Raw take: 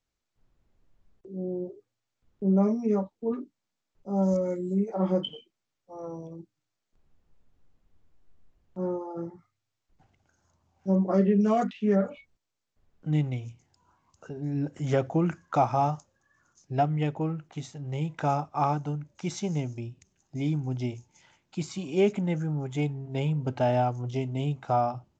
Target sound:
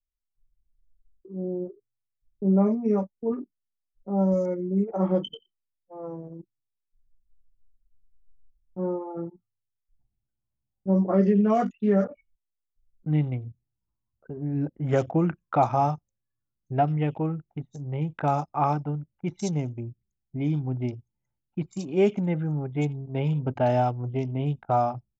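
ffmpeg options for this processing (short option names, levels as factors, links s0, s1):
-filter_complex "[0:a]acrossover=split=3400[s0][s1];[s1]adelay=90[s2];[s0][s2]amix=inputs=2:normalize=0,anlmdn=0.631,volume=1.26"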